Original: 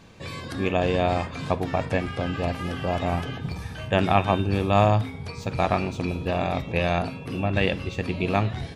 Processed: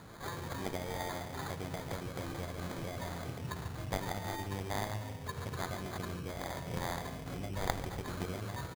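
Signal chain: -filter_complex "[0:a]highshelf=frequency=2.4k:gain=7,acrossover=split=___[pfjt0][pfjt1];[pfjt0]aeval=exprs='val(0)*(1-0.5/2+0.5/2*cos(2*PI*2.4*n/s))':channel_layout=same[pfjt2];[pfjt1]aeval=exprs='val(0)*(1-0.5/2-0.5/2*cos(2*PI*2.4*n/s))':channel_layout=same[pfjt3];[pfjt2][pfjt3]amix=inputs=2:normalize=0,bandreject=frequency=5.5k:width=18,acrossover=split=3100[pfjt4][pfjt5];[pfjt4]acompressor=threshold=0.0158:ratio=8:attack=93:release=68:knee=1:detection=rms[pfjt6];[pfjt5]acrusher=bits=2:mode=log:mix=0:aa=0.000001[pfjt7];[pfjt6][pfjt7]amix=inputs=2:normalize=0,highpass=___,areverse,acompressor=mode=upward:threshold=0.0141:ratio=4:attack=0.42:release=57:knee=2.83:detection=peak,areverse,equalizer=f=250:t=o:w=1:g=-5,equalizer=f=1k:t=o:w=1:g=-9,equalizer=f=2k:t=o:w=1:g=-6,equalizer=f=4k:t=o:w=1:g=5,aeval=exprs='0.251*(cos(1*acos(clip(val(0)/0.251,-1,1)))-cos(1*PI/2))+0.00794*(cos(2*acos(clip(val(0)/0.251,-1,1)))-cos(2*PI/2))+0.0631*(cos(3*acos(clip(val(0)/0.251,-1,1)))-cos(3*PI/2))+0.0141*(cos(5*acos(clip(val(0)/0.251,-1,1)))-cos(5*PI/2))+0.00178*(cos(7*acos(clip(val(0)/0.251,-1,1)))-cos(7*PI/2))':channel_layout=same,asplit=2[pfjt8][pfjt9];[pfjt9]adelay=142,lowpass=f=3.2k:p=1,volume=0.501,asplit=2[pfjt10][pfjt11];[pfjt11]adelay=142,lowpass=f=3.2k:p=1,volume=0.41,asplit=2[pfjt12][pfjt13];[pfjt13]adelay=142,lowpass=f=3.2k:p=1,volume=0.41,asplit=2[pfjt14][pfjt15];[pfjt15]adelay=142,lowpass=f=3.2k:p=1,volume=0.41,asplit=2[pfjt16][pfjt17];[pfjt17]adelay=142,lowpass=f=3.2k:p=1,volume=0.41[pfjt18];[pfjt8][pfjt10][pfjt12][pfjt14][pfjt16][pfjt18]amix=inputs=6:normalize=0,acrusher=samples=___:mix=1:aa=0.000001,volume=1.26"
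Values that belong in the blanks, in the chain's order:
1000, 70, 16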